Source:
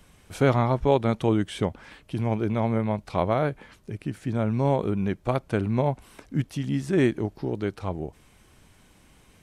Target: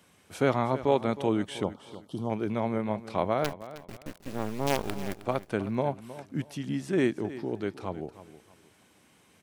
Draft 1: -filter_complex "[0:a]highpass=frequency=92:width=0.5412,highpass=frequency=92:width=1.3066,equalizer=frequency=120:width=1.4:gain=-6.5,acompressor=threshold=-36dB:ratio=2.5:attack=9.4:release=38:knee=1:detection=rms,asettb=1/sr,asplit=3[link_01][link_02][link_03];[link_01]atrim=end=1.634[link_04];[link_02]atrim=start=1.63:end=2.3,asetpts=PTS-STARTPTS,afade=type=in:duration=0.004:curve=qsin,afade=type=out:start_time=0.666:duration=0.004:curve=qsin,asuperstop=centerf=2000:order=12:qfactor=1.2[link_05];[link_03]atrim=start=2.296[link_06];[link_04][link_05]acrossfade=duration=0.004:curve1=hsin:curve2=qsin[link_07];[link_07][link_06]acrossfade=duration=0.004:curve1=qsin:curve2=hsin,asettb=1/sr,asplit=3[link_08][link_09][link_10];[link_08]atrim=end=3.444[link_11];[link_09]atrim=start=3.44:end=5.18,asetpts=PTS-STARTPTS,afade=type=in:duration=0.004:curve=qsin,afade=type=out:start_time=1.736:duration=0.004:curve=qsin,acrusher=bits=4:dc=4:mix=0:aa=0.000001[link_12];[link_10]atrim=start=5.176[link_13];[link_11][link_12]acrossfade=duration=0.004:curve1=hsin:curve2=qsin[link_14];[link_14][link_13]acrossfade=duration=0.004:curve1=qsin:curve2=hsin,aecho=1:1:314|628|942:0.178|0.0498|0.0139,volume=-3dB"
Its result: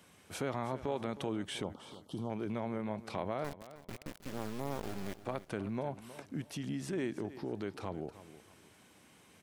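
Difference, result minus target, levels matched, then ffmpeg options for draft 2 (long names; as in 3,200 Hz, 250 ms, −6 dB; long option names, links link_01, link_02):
downward compressor: peak gain reduction +13.5 dB
-filter_complex "[0:a]highpass=frequency=92:width=0.5412,highpass=frequency=92:width=1.3066,equalizer=frequency=120:width=1.4:gain=-6.5,asettb=1/sr,asplit=3[link_01][link_02][link_03];[link_01]atrim=end=1.634[link_04];[link_02]atrim=start=1.63:end=2.3,asetpts=PTS-STARTPTS,afade=type=in:duration=0.004:curve=qsin,afade=type=out:start_time=0.666:duration=0.004:curve=qsin,asuperstop=centerf=2000:order=12:qfactor=1.2[link_05];[link_03]atrim=start=2.296[link_06];[link_04][link_05]acrossfade=duration=0.004:curve1=hsin:curve2=qsin[link_07];[link_07][link_06]acrossfade=duration=0.004:curve1=qsin:curve2=hsin,asettb=1/sr,asplit=3[link_08][link_09][link_10];[link_08]atrim=end=3.444[link_11];[link_09]atrim=start=3.44:end=5.18,asetpts=PTS-STARTPTS,afade=type=in:duration=0.004:curve=qsin,afade=type=out:start_time=1.736:duration=0.004:curve=qsin,acrusher=bits=4:dc=4:mix=0:aa=0.000001[link_12];[link_10]atrim=start=5.176[link_13];[link_11][link_12]acrossfade=duration=0.004:curve1=hsin:curve2=qsin[link_14];[link_14][link_13]acrossfade=duration=0.004:curve1=qsin:curve2=hsin,aecho=1:1:314|628|942:0.178|0.0498|0.0139,volume=-3dB"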